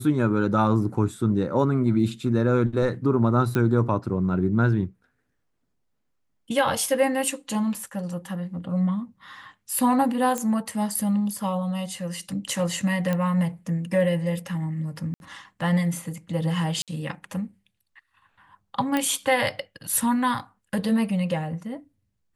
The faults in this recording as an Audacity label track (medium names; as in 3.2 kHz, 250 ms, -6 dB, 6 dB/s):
3.550000	3.550000	pop -13 dBFS
10.380000	10.380000	pop -13 dBFS
13.130000	13.130000	pop -14 dBFS
15.140000	15.200000	dropout 61 ms
16.820000	16.880000	dropout 57 ms
18.970000	18.970000	pop -11 dBFS